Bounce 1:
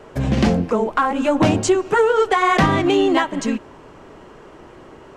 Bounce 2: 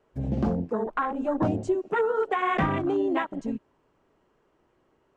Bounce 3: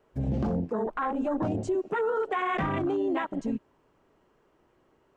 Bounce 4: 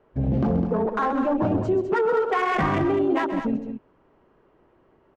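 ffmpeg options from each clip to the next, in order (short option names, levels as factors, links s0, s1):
-af "afwtdn=0.1,volume=0.355"
-af "alimiter=limit=0.0708:level=0:latency=1:release=19,volume=1.19"
-af "adynamicsmooth=sensitivity=6:basefreq=2900,aecho=1:1:131.2|204.1:0.282|0.355,volume=1.88"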